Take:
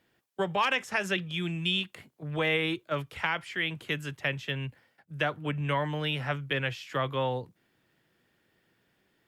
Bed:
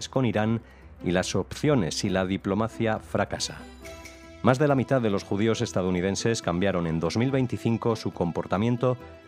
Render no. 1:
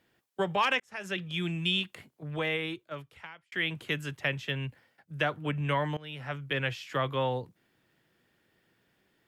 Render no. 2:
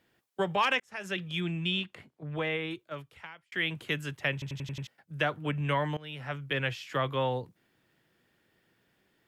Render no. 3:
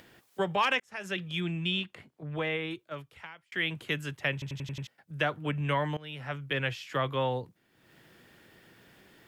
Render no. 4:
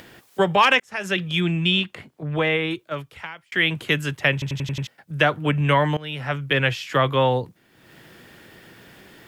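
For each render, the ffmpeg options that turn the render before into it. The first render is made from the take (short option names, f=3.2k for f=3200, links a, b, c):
-filter_complex "[0:a]asplit=4[a][b][c][d];[a]atrim=end=0.8,asetpts=PTS-STARTPTS,afade=t=out:st=0.796:d=0.004:c=hsin[e];[b]atrim=start=0.8:end=3.52,asetpts=PTS-STARTPTS,afade=t=in:d=0.57,afade=t=out:st=1.14:d=1.58[f];[c]atrim=start=3.52:end=5.97,asetpts=PTS-STARTPTS,afade=t=in:d=0.004:c=hsin,afade=t=out:st=2.446:d=0.004:c=hsin:silence=0.1[g];[d]atrim=start=5.97,asetpts=PTS-STARTPTS,afade=t=in:d=0.67:silence=0.1[h];[e][f][g][h]concat=n=4:v=0:a=1"
-filter_complex "[0:a]asettb=1/sr,asplit=3[a][b][c];[a]atrim=end=1.404[d];[b]atrim=start=1.4:end=2.71,asetpts=PTS-STARTPTS,afade=t=in:d=0.004:c=qsin,afade=t=out:st=1.306:d=0.004:c=qsin,aemphasis=mode=reproduction:type=50kf[e];[c]atrim=start=2.706[f];[d][e]acrossfade=d=0.004:c1=hsin:c2=qsin[g];[g][f]acrossfade=d=0.004:c1=qsin:c2=hsin,asplit=7[h][i][j][k][l][m][n];[h]atrim=end=4.422[o];[i]atrim=start=4.328:end=4.422[p];[j]atrim=start=4.328:end=4.422[q];[k]atrim=start=4.328:end=4.422[r];[l]atrim=start=4.328:end=4.422[s];[m]atrim=start=4.328:end=4.422[t];[n]atrim=start=4.868[u];[o][p]acrossfade=d=0.004:c1=hsin:c2=hsin[v];[v][q]acrossfade=d=0.004:c1=hsin:c2=hsin[w];[w][r]acrossfade=d=0.004:c1=hsin:c2=hsin[x];[x][s]acrossfade=d=0.004:c1=hsin:c2=hsin[y];[y][t]acrossfade=d=0.004:c1=hsin:c2=hsin[z];[z][u]acrossfade=d=0.004:c1=hsin:c2=hsin"
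-af "acompressor=mode=upward:threshold=-45dB:ratio=2.5"
-af "volume=10.5dB"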